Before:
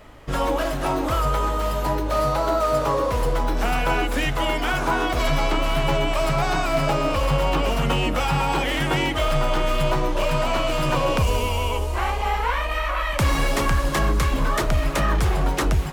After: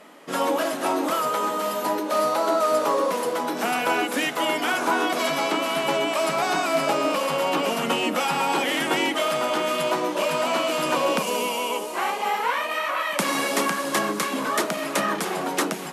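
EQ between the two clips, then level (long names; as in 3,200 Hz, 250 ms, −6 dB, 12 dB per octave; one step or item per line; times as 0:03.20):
linear-phase brick-wall band-pass 170–13,000 Hz
high-shelf EQ 9,400 Hz +9.5 dB
0.0 dB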